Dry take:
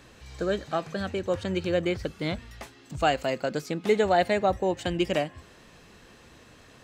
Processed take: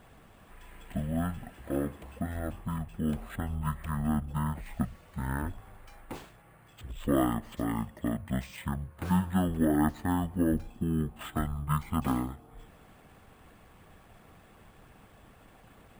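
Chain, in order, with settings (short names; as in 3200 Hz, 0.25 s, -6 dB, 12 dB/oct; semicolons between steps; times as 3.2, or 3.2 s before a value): speed mistake 78 rpm record played at 33 rpm; harmonic-percussive split harmonic -6 dB; sample-and-hold 4×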